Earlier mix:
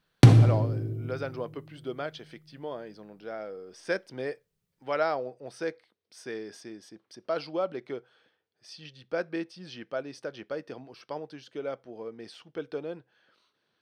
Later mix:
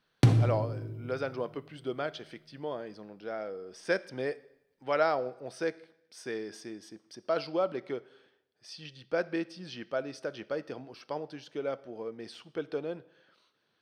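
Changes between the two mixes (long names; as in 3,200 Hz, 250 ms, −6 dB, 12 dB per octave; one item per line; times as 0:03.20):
speech: send on
background −7.0 dB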